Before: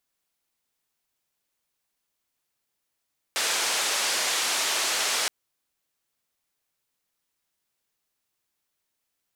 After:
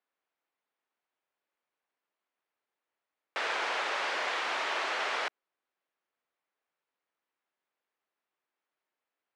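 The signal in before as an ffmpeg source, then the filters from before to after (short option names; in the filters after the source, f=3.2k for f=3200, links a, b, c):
-f lavfi -i "anoisesrc=c=white:d=1.92:r=44100:seed=1,highpass=f=470,lowpass=f=7300,volume=-16.3dB"
-af "highpass=350,lowpass=2k"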